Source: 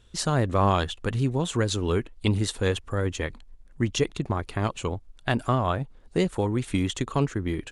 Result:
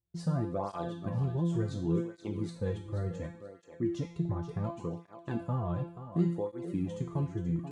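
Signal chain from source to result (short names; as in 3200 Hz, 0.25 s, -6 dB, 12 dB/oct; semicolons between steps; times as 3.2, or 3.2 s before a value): resonator 170 Hz, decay 0.57 s, harmonics all, mix 90%; gate with hold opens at -55 dBFS; HPF 83 Hz; tilt -3 dB/oct; in parallel at -3 dB: limiter -27.5 dBFS, peak gain reduction 9.5 dB; on the sum: EQ curve 740 Hz 0 dB, 3000 Hz -8 dB, 4300 Hz -2 dB; thinning echo 0.482 s, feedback 24%, high-pass 160 Hz, level -10 dB; tape flanging out of phase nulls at 0.69 Hz, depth 4.6 ms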